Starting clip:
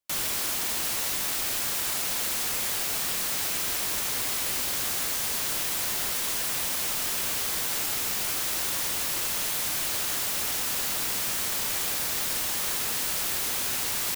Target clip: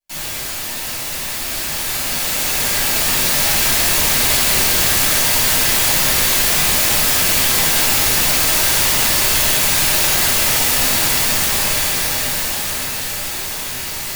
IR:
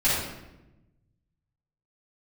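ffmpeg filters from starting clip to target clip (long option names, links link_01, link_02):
-filter_complex "[0:a]dynaudnorm=framelen=290:gausssize=17:maxgain=11dB[link_01];[1:a]atrim=start_sample=2205,afade=type=out:start_time=0.19:duration=0.01,atrim=end_sample=8820[link_02];[link_01][link_02]afir=irnorm=-1:irlink=0,volume=-9dB"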